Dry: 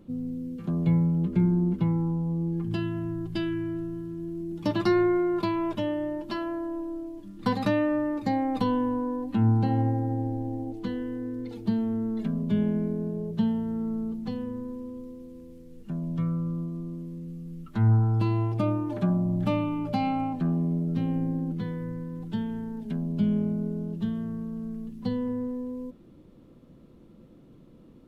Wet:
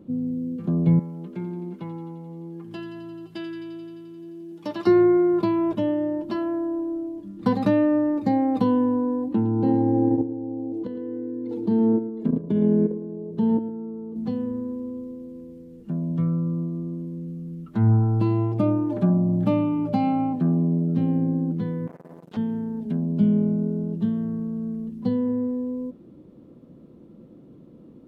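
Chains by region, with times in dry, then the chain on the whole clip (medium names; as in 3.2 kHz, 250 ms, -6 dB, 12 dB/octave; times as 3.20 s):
0.99–4.87 s: high-pass 1 kHz 6 dB/octave + feedback echo behind a high-pass 87 ms, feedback 77%, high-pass 2.6 kHz, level -7.5 dB
9.28–14.16 s: level held to a coarse grid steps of 14 dB + small resonant body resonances 320/460/900 Hz, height 9 dB, ringing for 30 ms + delay 110 ms -13 dB
21.87–22.37 s: Butterworth band-stop 740 Hz, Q 6.5 + tilt shelf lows -9.5 dB, about 640 Hz + transformer saturation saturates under 2 kHz
whole clip: high-pass 420 Hz 6 dB/octave; tilt shelf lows +9.5 dB, about 660 Hz; trim +5 dB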